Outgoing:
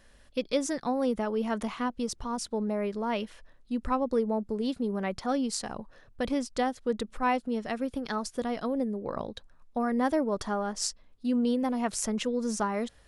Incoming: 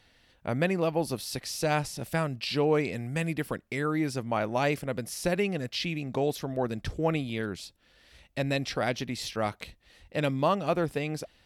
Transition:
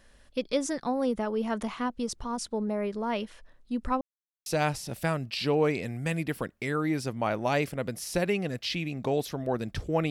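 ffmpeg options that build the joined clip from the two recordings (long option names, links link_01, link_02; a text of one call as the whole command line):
ffmpeg -i cue0.wav -i cue1.wav -filter_complex "[0:a]apad=whole_dur=10.1,atrim=end=10.1,asplit=2[link_01][link_02];[link_01]atrim=end=4.01,asetpts=PTS-STARTPTS,afade=type=out:start_time=4.006:duration=0.004:curve=hsin[link_03];[link_02]atrim=start=4.01:end=4.46,asetpts=PTS-STARTPTS,volume=0[link_04];[1:a]atrim=start=1.56:end=7.2,asetpts=PTS-STARTPTS,afade=type=in:duration=0.004:curve=hsin[link_05];[link_03][link_04][link_05]concat=n=3:v=0:a=1" out.wav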